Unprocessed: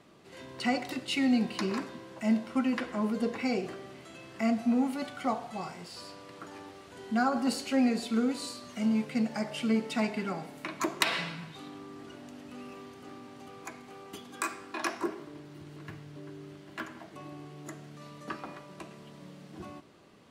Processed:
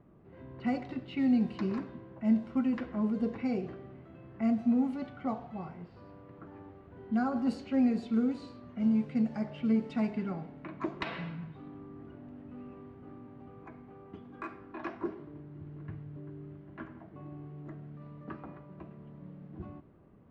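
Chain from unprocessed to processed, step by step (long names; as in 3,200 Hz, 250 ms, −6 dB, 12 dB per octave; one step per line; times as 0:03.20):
RIAA equalisation playback
low-pass that shuts in the quiet parts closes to 1,600 Hz, open at −17.5 dBFS
level −7 dB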